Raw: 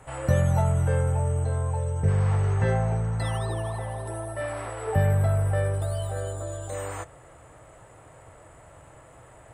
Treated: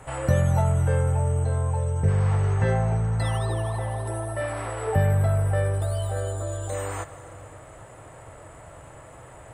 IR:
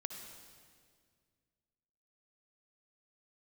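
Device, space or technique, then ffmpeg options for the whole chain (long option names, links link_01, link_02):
ducked reverb: -filter_complex "[0:a]asplit=3[link_01][link_02][link_03];[1:a]atrim=start_sample=2205[link_04];[link_02][link_04]afir=irnorm=-1:irlink=0[link_05];[link_03]apad=whole_len=420389[link_06];[link_05][link_06]sidechaincompress=threshold=-33dB:ratio=8:attack=16:release=822,volume=0dB[link_07];[link_01][link_07]amix=inputs=2:normalize=0"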